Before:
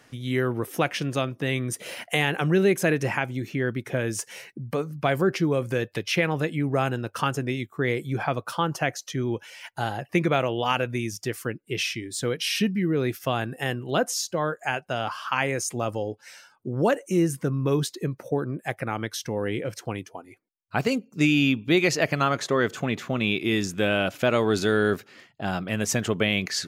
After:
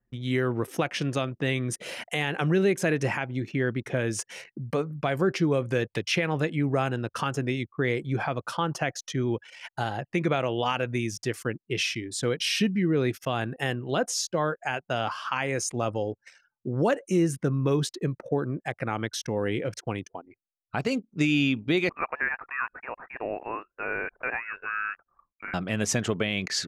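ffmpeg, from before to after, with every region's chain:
-filter_complex "[0:a]asettb=1/sr,asplit=3[a][b][c];[a]atrim=end=21.894[d];[b]atrim=start=21.89:end=25.54,asetpts=PTS-STARTPTS,afade=t=in:d=0.004:c=qsin,afade=t=out:st=3.646:d=0.004:c=qsin,highpass=1.3k,lowpass=f=2.6k:t=q:w=0.5098,lowpass=f=2.6k:t=q:w=0.6013,lowpass=f=2.6k:t=q:w=0.9,lowpass=f=2.6k:t=q:w=2.563,afreqshift=-3000[e];[c]atrim=start=25.536[f];[d][e]acrossfade=d=0.004:c1=hsin:c2=qsin[g];[g][f]acrossfade=d=0.004:c1=qsin:c2=hsin,alimiter=limit=-14dB:level=0:latency=1:release=168,anlmdn=0.1,lowpass=9.5k"

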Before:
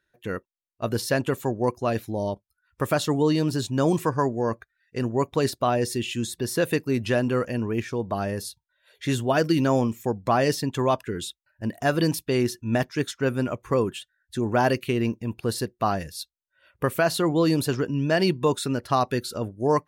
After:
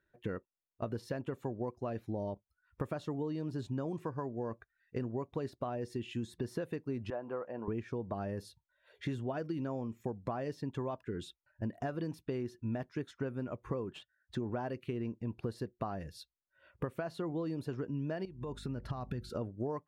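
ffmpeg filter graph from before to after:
-filter_complex "[0:a]asettb=1/sr,asplit=3[a][b][c];[a]atrim=end=7.104[d];[b]atrim=start=7.1:end=7.68,asetpts=PTS-STARTPTS,afade=t=in:d=0.004:c=qsin,afade=t=out:st=0.576:d=0.004:c=qsin,bandpass=f=830:t=q:w=1.8,asplit=2[e][f];[f]adelay=14,volume=-14dB[g];[e][g]amix=inputs=2:normalize=0,atrim=end_sample=25578[h];[c]atrim=start=7.676[i];[d][h]acrossfade=d=0.004:c1=hsin:c2=qsin[j];[j][i]acrossfade=d=0.004:c1=qsin:c2=hsin,asettb=1/sr,asplit=3[k][l][m];[k]atrim=end=13.914[n];[l]atrim=start=13.91:end=14.5,asetpts=PTS-STARTPTS,afade=t=in:d=0.004:c=qsin,afade=t=out:st=0.586:d=0.004:c=qsin,highpass=44,highshelf=f=3.4k:g=8,adynamicsmooth=sensitivity=6.5:basefreq=3.1k[o];[m]atrim=start=14.496[p];[n][o]acrossfade=d=0.004:c1=hsin:c2=qsin[q];[q][p]acrossfade=d=0.004:c1=qsin:c2=hsin,asettb=1/sr,asplit=3[r][s][t];[r]atrim=end=18.254[u];[s]atrim=start=18.25:end=19.3,asetpts=PTS-STARTPTS,afade=t=in:d=0.004:c=qsin,afade=t=out:st=1.046:d=0.004:c=qsin,acompressor=threshold=-33dB:ratio=6:attack=3.2:release=140:knee=1:detection=peak,asubboost=boost=8:cutoff=210,aeval=exprs='val(0)+0.00355*(sin(2*PI*50*n/s)+sin(2*PI*2*50*n/s)/2+sin(2*PI*3*50*n/s)/3+sin(2*PI*4*50*n/s)/4+sin(2*PI*5*50*n/s)/5)':c=same[v];[t]atrim=start=19.296[w];[u][v]acrossfade=d=0.004:c1=hsin:c2=qsin[x];[x][w]acrossfade=d=0.004:c1=qsin:c2=hsin,acompressor=threshold=-33dB:ratio=12,lowpass=f=1.1k:p=1"

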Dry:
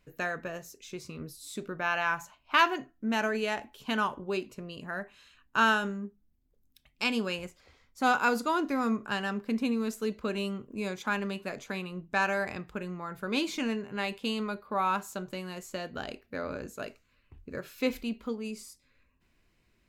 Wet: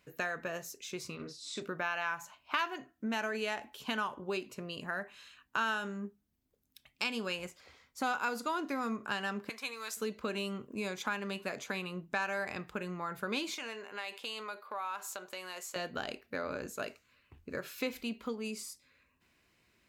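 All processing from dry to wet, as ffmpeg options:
-filter_complex "[0:a]asettb=1/sr,asplit=3[a][b][c];[a]atrim=end=1.154[d];[b]atrim=start=1.15:end=1.62,asetpts=PTS-STARTPTS,afade=t=in:d=0.004:c=qsin,afade=t=out:st=0.466:d=0.004:c=qsin,lowpass=f=6.6k:w=0.5412,lowpass=f=6.6k:w=1.3066,lowshelf=f=200:g=-9.5,asplit=2[e][f];[f]adelay=42,volume=-5.5dB[g];[e][g]amix=inputs=2:normalize=0,atrim=end_sample=20727[h];[c]atrim=start=1.616[i];[d][h]acrossfade=d=0.004:c1=hsin:c2=qsin[j];[j][i]acrossfade=d=0.004:c1=qsin:c2=hsin,asettb=1/sr,asplit=3[k][l][m];[k]atrim=end=9.494[n];[l]atrim=start=9.49:end=9.97,asetpts=PTS-STARTPTS,afade=t=in:d=0.004:c=qsin,afade=t=out:st=0.476:d=0.004:c=qsin,highpass=990,bandreject=f=2.8k:w=15,asplit=2[o][p];[p]adelay=15,volume=-14dB[q];[o][q]amix=inputs=2:normalize=0,atrim=end_sample=21168[r];[m]atrim=start=9.966[s];[n][r]acrossfade=d=0.004:c1=hsin:c2=qsin[t];[t][s]acrossfade=d=0.004:c1=qsin:c2=hsin,asettb=1/sr,asplit=3[u][v][w];[u]atrim=end=13.544[x];[v]atrim=start=13.54:end=15.76,asetpts=PTS-STARTPTS,afade=t=in:d=0.004:c=qsin,afade=t=out:st=2.216:d=0.004:c=qsin,highpass=520,acompressor=threshold=-41dB:ratio=2.5:attack=3.2:release=140:knee=1:detection=peak[y];[w]atrim=start=15.756[z];[x][y]acrossfade=d=0.004:c1=hsin:c2=qsin[aa];[aa][z]acrossfade=d=0.004:c1=qsin:c2=hsin,highpass=66,lowshelf=f=440:g=-6.5,acompressor=threshold=-37dB:ratio=3,volume=3.5dB"

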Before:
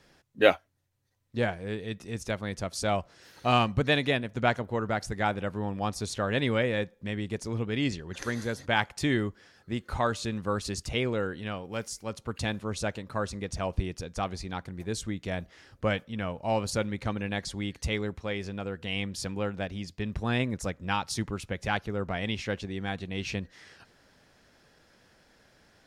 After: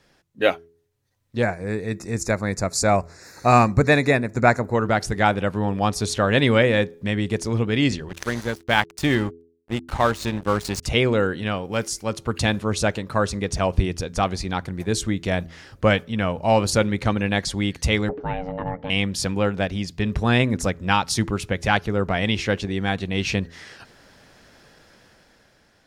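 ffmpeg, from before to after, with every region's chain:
-filter_complex "[0:a]asettb=1/sr,asplit=3[a][b][c];[a]atrim=end=1.424[d];[b]atrim=start=1.42:end=4.75,asetpts=PTS-STARTPTS,afade=t=in:d=0.004:c=qsin,afade=t=out:st=3.326:d=0.004:c=qsin,asuperstop=centerf=3100:order=4:qfactor=2,equalizer=f=7.2k:w=6.9:g=10.5[e];[c]atrim=start=4.746[f];[d][e]acrossfade=d=0.004:c1=hsin:c2=qsin[g];[g][f]acrossfade=d=0.004:c1=qsin:c2=hsin,asettb=1/sr,asplit=3[h][i][j];[h]atrim=end=8.094[k];[i]atrim=start=8.09:end=10.83,asetpts=PTS-STARTPTS,afade=t=in:d=0.004:c=qsin,afade=t=out:st=2.736:d=0.004:c=qsin,aeval=exprs='val(0)+0.00398*(sin(2*PI*50*n/s)+sin(2*PI*2*50*n/s)/2+sin(2*PI*3*50*n/s)/3+sin(2*PI*4*50*n/s)/4+sin(2*PI*5*50*n/s)/5)':c=same,aeval=exprs='sgn(val(0))*max(abs(val(0))-0.0106,0)':c=same[l];[j]atrim=start=10.826[m];[k][l]acrossfade=d=0.004:c1=hsin:c2=qsin[n];[n][m]acrossfade=d=0.004:c1=qsin:c2=hsin,asettb=1/sr,asplit=3[o][p][q];[o]atrim=end=18.094[r];[p]atrim=start=18.09:end=18.9,asetpts=PTS-STARTPTS,afade=t=in:d=0.004:c=qsin,afade=t=out:st=0.806:d=0.004:c=qsin,lowpass=1.4k,aeval=exprs='val(0)*sin(2*PI*370*n/s)':c=same[s];[q]atrim=start=18.896[t];[r][s]acrossfade=d=0.004:c1=hsin:c2=qsin[u];[u][t]acrossfade=d=0.004:c1=qsin:c2=hsin,bandreject=f=83.72:t=h:w=4,bandreject=f=167.44:t=h:w=4,bandreject=f=251.16:t=h:w=4,bandreject=f=334.88:t=h:w=4,bandreject=f=418.6:t=h:w=4,dynaudnorm=f=190:g=11:m=9dB,volume=1dB"

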